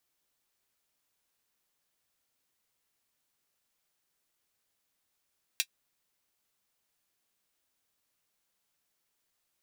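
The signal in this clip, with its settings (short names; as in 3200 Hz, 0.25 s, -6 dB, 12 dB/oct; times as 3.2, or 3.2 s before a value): closed hi-hat, high-pass 2700 Hz, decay 0.07 s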